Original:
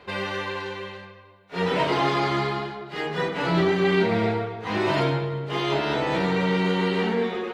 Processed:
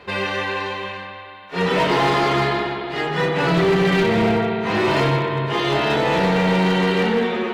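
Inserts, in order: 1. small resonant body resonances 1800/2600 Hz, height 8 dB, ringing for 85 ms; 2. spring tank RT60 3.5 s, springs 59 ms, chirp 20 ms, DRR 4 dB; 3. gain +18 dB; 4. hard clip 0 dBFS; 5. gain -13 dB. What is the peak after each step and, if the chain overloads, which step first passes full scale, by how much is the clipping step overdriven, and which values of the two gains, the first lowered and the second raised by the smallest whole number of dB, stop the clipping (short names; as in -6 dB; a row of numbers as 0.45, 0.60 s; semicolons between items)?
-9.0, -8.0, +10.0, 0.0, -13.0 dBFS; step 3, 10.0 dB; step 3 +8 dB, step 5 -3 dB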